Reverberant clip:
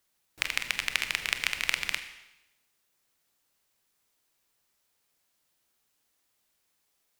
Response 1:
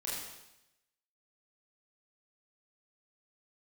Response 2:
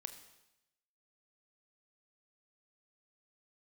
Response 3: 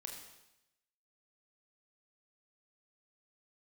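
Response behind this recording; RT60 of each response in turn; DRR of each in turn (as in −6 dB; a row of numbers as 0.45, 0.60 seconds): 2; 0.90, 0.90, 0.90 seconds; −7.0, 8.0, 1.5 decibels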